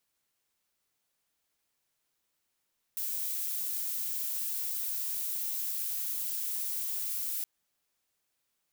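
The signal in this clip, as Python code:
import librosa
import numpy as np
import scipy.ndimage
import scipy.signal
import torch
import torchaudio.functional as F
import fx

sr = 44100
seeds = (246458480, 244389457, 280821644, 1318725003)

y = fx.noise_colour(sr, seeds[0], length_s=4.47, colour='violet', level_db=-34.0)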